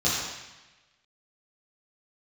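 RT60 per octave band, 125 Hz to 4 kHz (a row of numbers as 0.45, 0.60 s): 1.2, 1.1, 1.0, 1.1, 1.3, 1.1 s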